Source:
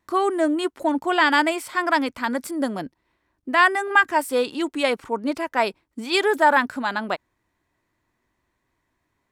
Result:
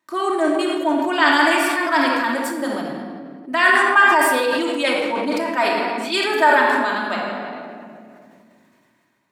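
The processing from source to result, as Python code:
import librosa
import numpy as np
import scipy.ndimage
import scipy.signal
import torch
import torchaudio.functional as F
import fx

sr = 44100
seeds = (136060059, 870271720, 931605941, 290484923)

y = scipy.signal.sosfilt(scipy.signal.butter(4, 120.0, 'highpass', fs=sr, output='sos'), x)
y = fx.low_shelf(y, sr, hz=480.0, db=-7.0)
y = fx.room_shoebox(y, sr, seeds[0], volume_m3=2700.0, walls='mixed', distance_m=2.7)
y = fx.sustainer(y, sr, db_per_s=22.0)
y = F.gain(torch.from_numpy(y), -1.0).numpy()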